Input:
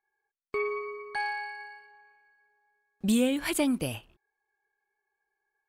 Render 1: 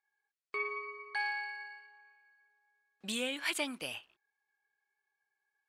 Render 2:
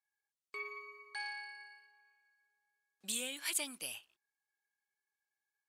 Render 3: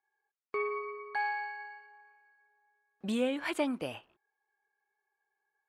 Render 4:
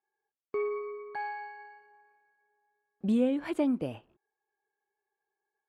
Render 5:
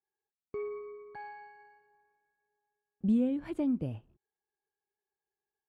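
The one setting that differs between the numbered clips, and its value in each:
resonant band-pass, frequency: 2,800, 7,600, 1,000, 400, 130 Hertz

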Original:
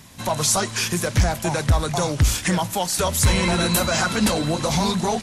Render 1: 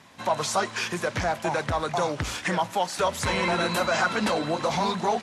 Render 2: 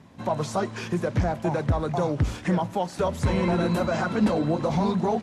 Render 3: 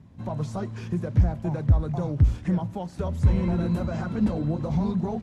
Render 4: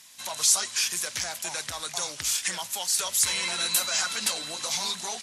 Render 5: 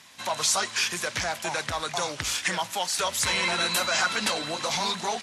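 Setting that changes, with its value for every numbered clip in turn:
resonant band-pass, frequency: 1,000, 340, 100, 6,900, 2,600 Hertz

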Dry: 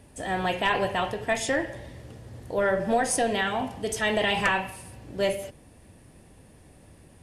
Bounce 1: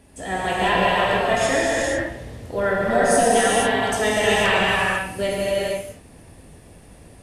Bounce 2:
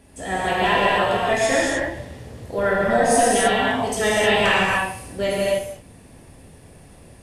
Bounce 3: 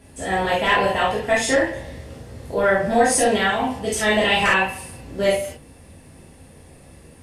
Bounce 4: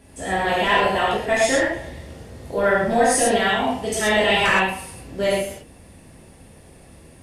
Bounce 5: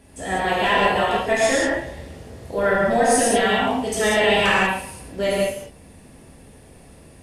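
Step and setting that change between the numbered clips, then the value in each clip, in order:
reverb whose tail is shaped and stops, gate: 520, 330, 90, 150, 220 milliseconds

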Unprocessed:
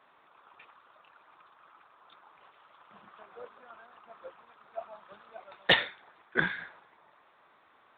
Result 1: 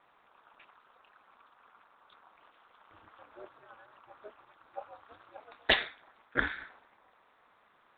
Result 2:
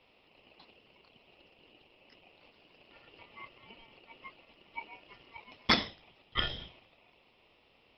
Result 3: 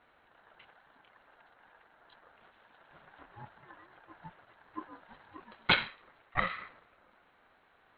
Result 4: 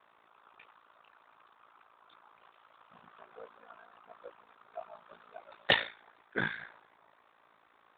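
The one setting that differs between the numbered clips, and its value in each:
ring modulation, frequency: 110, 1,600, 360, 28 Hertz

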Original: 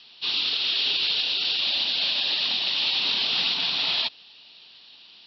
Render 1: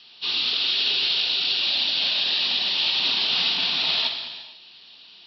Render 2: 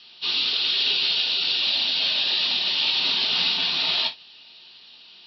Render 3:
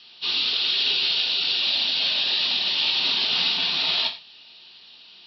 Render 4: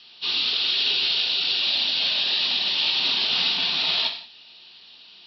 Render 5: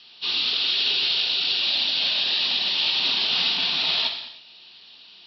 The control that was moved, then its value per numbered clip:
reverb whose tail is shaped and stops, gate: 520, 90, 140, 220, 340 milliseconds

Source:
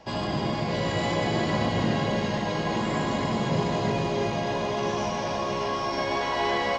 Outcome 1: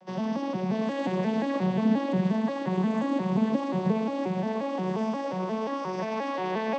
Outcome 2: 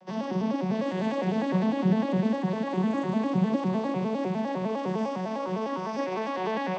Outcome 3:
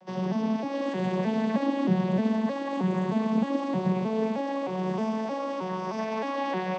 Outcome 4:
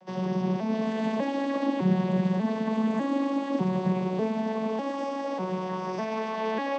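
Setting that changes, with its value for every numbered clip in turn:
vocoder with an arpeggio as carrier, a note every: 177, 101, 311, 598 milliseconds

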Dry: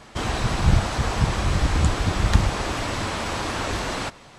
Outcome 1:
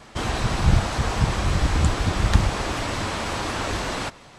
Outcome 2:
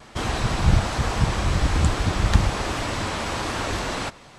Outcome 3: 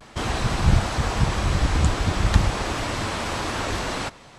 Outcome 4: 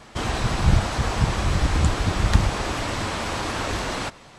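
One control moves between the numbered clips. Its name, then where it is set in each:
pitch vibrato, speed: 5.5, 1.2, 0.39, 8.7 Hertz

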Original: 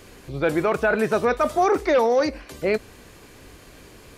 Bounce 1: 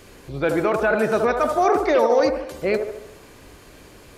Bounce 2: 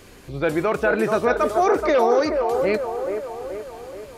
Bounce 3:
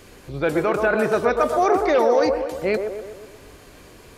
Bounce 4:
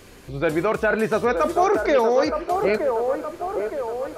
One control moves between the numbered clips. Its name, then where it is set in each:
delay with a band-pass on its return, delay time: 74, 428, 123, 919 milliseconds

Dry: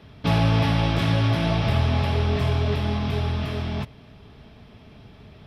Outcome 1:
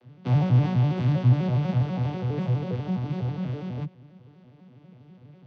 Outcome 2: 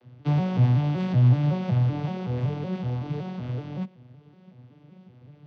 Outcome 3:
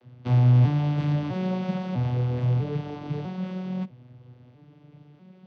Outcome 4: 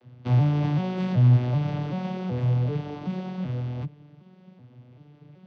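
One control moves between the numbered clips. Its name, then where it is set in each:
vocoder with an arpeggio as carrier, a note every: 82, 188, 648, 382 milliseconds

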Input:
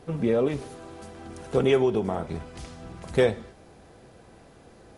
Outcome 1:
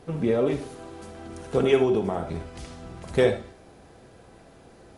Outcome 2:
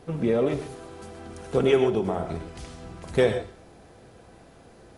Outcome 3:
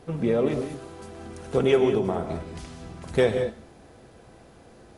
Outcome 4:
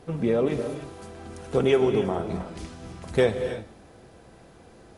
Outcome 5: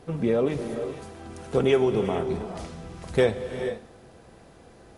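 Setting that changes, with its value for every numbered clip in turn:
reverb whose tail is shaped and stops, gate: 90, 150, 220, 330, 490 milliseconds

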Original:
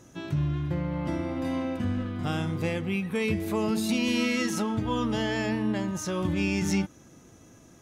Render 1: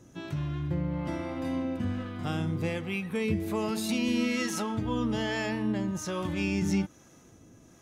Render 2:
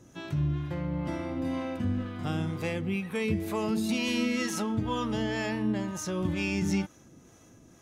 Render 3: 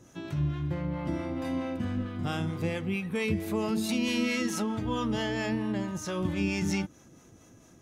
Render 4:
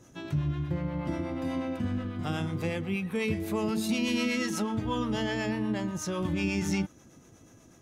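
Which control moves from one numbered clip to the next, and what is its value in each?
two-band tremolo in antiphase, speed: 1.2, 2.1, 4.5, 8.2 Hertz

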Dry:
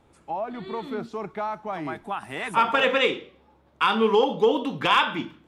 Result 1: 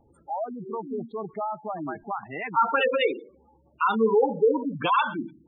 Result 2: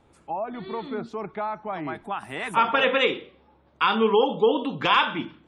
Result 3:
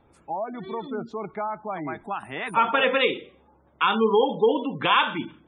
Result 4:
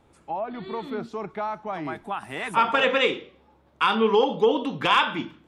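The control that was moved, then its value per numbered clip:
gate on every frequency bin, under each frame's peak: −10, −40, −25, −55 decibels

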